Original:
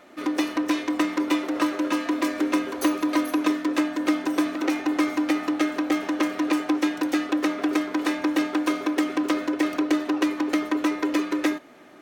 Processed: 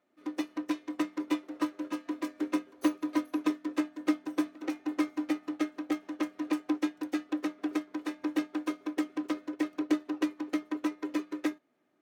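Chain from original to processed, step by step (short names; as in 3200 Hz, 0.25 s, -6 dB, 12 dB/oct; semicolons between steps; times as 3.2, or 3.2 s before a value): HPF 73 Hz; low shelf 430 Hz +5.5 dB; upward expander 2.5:1, over -28 dBFS; gain -6.5 dB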